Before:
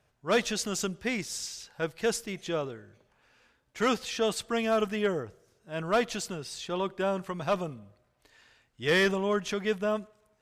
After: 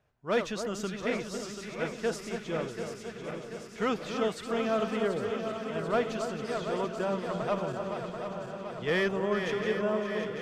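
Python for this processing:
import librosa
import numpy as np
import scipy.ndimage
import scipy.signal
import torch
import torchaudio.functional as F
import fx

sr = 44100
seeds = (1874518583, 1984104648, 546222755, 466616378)

y = fx.reverse_delay_fb(x, sr, ms=368, feedback_pct=80, wet_db=-7)
y = fx.high_shelf(y, sr, hz=3900.0, db=-11.0)
y = fx.echo_alternate(y, sr, ms=280, hz=1500.0, feedback_pct=71, wet_db=-8.5)
y = y * librosa.db_to_amplitude(-2.5)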